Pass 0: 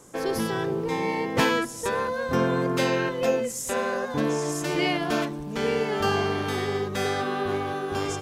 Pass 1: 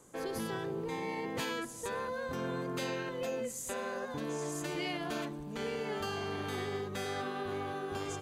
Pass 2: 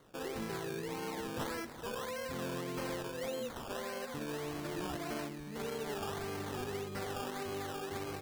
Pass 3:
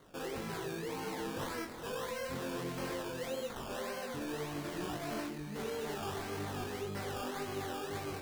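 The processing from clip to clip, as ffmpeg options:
-filter_complex "[0:a]bandreject=f=5400:w=8.7,acrossover=split=3100[s0][s1];[s0]alimiter=limit=0.0944:level=0:latency=1:release=47[s2];[s2][s1]amix=inputs=2:normalize=0,volume=0.376"
-af "acrusher=samples=17:mix=1:aa=0.000001:lfo=1:lforange=10.2:lforate=1.7,volume=0.75"
-af "asoftclip=type=tanh:threshold=0.0168,flanger=delay=19:depth=5.1:speed=2,volume=1.88"

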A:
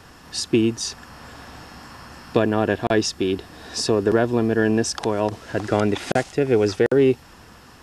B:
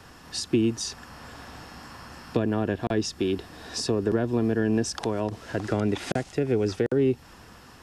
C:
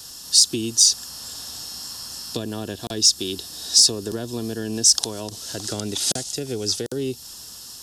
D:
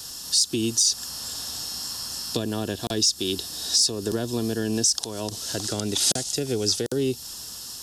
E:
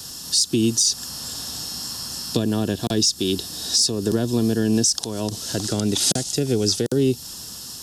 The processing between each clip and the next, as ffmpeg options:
-filter_complex "[0:a]acrossover=split=330[s0][s1];[s1]acompressor=threshold=0.0562:ratio=6[s2];[s0][s2]amix=inputs=2:normalize=0,volume=0.75"
-af "aexciter=amount=9.4:drive=7.9:freq=3400,volume=0.596"
-af "alimiter=limit=0.251:level=0:latency=1:release=210,volume=1.26"
-af "equalizer=f=170:t=o:w=2.1:g=7,volume=1.19"

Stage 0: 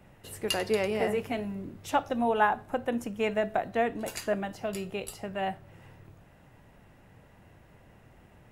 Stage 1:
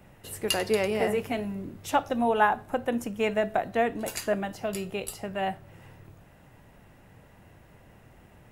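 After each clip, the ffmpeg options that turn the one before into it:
-af "highshelf=f=8700:g=5,volume=1.26"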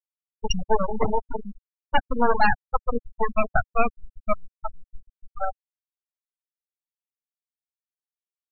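-af "aeval=exprs='0.376*(cos(1*acos(clip(val(0)/0.376,-1,1)))-cos(1*PI/2))+0.168*(cos(8*acos(clip(val(0)/0.376,-1,1)))-cos(8*PI/2))':c=same,afftfilt=real='re*gte(hypot(re,im),0.316)':imag='im*gte(hypot(re,im),0.316)':win_size=1024:overlap=0.75"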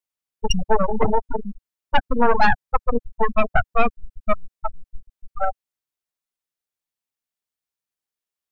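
-af "asoftclip=type=tanh:threshold=0.335,volume=1.88"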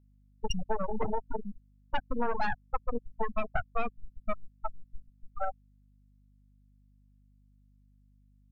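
-af "acompressor=threshold=0.158:ratio=4,aeval=exprs='val(0)+0.00224*(sin(2*PI*50*n/s)+sin(2*PI*2*50*n/s)/2+sin(2*PI*3*50*n/s)/3+sin(2*PI*4*50*n/s)/4+sin(2*PI*5*50*n/s)/5)':c=same,volume=0.376"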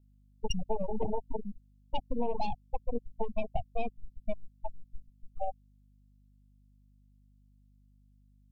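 -af "asuperstop=centerf=1500:order=8:qfactor=0.88"

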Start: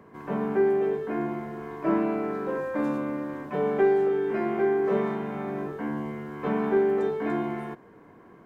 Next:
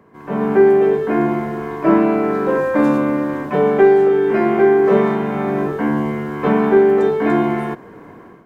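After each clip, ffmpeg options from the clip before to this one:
-af "dynaudnorm=f=140:g=5:m=3.98,volume=1.12"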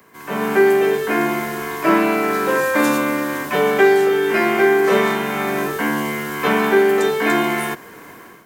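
-filter_complex "[0:a]lowshelf=f=370:g=-6,acrossover=split=140|540|830[s0][s1][s2][s3];[s0]alimiter=level_in=5.31:limit=0.0631:level=0:latency=1,volume=0.188[s4];[s3]crystalizer=i=8.5:c=0[s5];[s4][s1][s2][s5]amix=inputs=4:normalize=0"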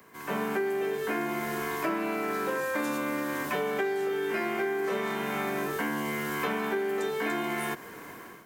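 -af "acompressor=threshold=0.0708:ratio=6,volume=0.596"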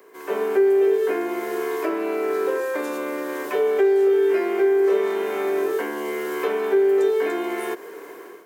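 -af "highpass=f=400:t=q:w=4.7"

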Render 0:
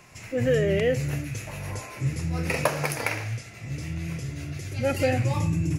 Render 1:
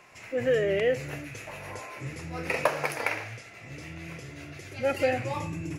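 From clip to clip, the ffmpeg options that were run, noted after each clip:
-af "bass=f=250:g=-13,treble=f=4000:g=-8"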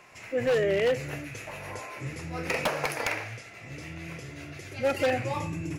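-af "aeval=exprs='0.106*(abs(mod(val(0)/0.106+3,4)-2)-1)':c=same,volume=1.12"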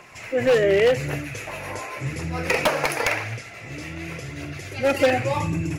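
-af "aphaser=in_gain=1:out_gain=1:delay=3.9:decay=0.29:speed=0.9:type=triangular,volume=2.11"

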